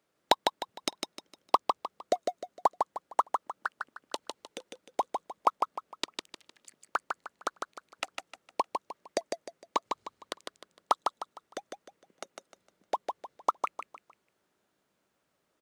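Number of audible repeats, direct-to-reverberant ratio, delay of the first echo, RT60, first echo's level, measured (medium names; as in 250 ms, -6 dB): 4, no reverb, 153 ms, no reverb, -4.5 dB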